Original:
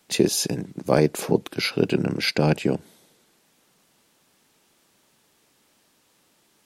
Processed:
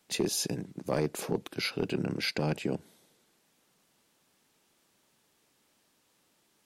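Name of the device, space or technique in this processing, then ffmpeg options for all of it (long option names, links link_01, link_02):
clipper into limiter: -af "asoftclip=type=hard:threshold=-9.5dB,alimiter=limit=-13dB:level=0:latency=1:release=21,volume=-7dB"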